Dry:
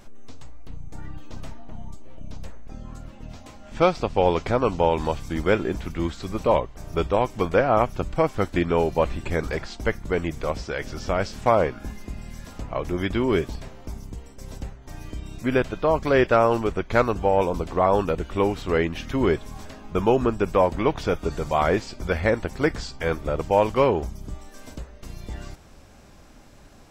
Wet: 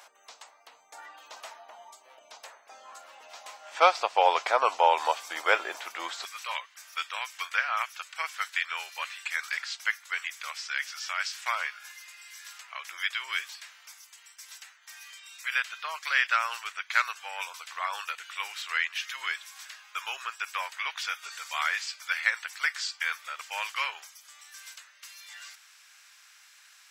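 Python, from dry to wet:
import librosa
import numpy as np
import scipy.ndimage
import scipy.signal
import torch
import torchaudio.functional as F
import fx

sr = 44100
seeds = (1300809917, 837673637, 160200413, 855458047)

y = fx.highpass(x, sr, hz=fx.steps((0.0, 710.0), (6.25, 1500.0)), slope=24)
y = y * librosa.db_to_amplitude(4.0)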